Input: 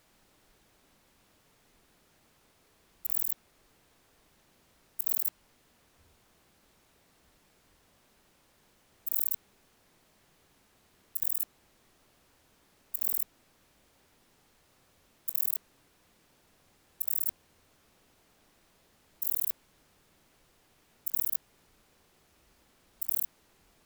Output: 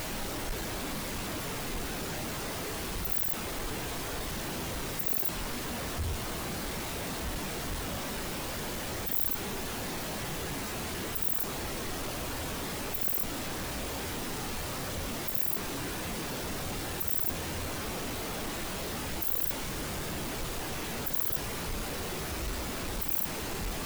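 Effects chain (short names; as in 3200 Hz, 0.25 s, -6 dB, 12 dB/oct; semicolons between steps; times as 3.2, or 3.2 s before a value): zero-crossing step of -24.5 dBFS; spectral expander 1.5:1; gain -3.5 dB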